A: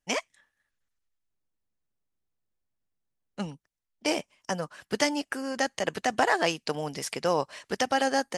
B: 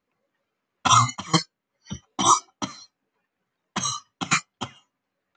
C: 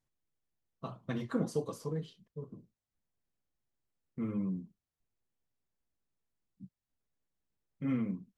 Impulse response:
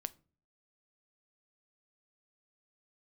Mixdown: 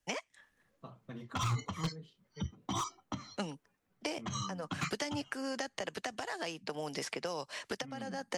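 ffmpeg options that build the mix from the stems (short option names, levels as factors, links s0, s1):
-filter_complex "[0:a]acrossover=split=200|2400|6800[s0][s1][s2][s3];[s0]acompressor=threshold=0.00158:ratio=4[s4];[s1]acompressor=threshold=0.0316:ratio=4[s5];[s2]acompressor=threshold=0.00501:ratio=4[s6];[s3]acompressor=threshold=0.001:ratio=4[s7];[s4][s5][s6][s7]amix=inputs=4:normalize=0,volume=1.41[s8];[1:a]aemphasis=mode=reproduction:type=bsi,asoftclip=type=hard:threshold=0.2,adelay=500,volume=0.708[s9];[2:a]alimiter=level_in=1.5:limit=0.0631:level=0:latency=1:release=98,volume=0.668,volume=0.398,asplit=2[s10][s11];[s11]apad=whole_len=369327[s12];[s8][s12]sidechaincompress=threshold=0.00178:ratio=4:attack=9.2:release=163[s13];[s9][s10]amix=inputs=2:normalize=0,alimiter=level_in=1.26:limit=0.0631:level=0:latency=1:release=171,volume=0.794,volume=1[s14];[s13][s14]amix=inputs=2:normalize=0,acrossover=split=130|3000[s15][s16][s17];[s16]acompressor=threshold=0.0178:ratio=4[s18];[s15][s18][s17]amix=inputs=3:normalize=0,alimiter=limit=0.075:level=0:latency=1:release=392"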